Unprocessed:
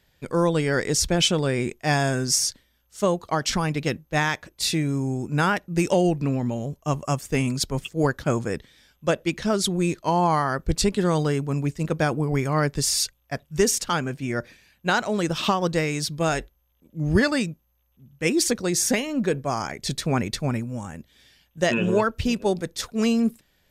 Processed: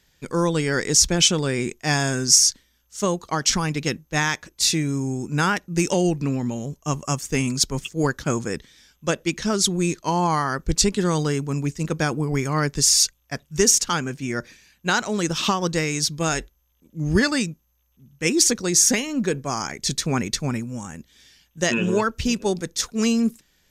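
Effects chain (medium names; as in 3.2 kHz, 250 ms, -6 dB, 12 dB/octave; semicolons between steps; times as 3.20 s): fifteen-band graphic EQ 100 Hz -5 dB, 630 Hz -6 dB, 6.3 kHz +8 dB; trim +1.5 dB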